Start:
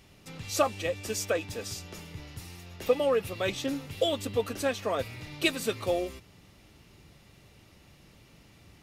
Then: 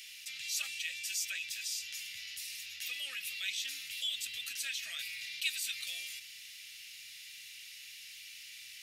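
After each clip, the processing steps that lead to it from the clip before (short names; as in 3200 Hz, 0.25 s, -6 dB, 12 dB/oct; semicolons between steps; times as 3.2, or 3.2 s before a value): inverse Chebyshev high-pass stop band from 1100 Hz, stop band 40 dB; fast leveller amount 50%; gain -5.5 dB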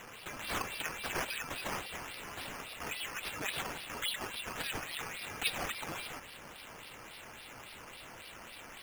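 decimation with a swept rate 9×, swing 60% 3.6 Hz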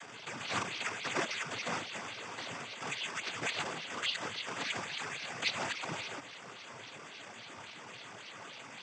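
noise vocoder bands 16; gain +2.5 dB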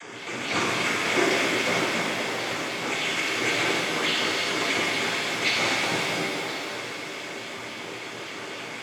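small resonant body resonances 360/2200 Hz, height 10 dB, ringing for 25 ms; on a send: delay with a stepping band-pass 0.258 s, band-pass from 230 Hz, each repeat 1.4 oct, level -2 dB; on the sum: shimmer reverb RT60 2 s, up +7 st, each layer -8 dB, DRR -4.5 dB; gain +4 dB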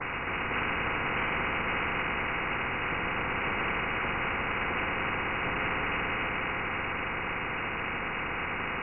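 fixed phaser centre 1400 Hz, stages 8; inverted band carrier 2700 Hz; spectral compressor 4:1; gain -3 dB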